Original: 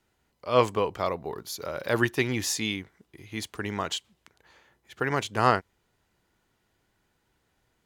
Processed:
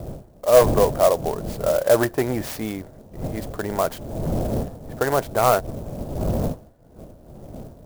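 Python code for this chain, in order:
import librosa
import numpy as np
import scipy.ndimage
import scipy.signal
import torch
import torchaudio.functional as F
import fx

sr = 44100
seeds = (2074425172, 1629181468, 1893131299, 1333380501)

p1 = fx.dmg_wind(x, sr, seeds[0], corner_hz=180.0, level_db=-33.0)
p2 = fx.curve_eq(p1, sr, hz=(1600.0, 2800.0, 4900.0), db=(0, -15, -6))
p3 = fx.fold_sine(p2, sr, drive_db=12, ceiling_db=-5.0)
p4 = p2 + (p3 * 10.0 ** (-12.0 / 20.0))
p5 = fx.peak_eq(p4, sr, hz=620.0, db=14.5, octaves=0.82)
p6 = fx.clock_jitter(p5, sr, seeds[1], jitter_ms=0.043)
y = p6 * 10.0 ** (-5.5 / 20.0)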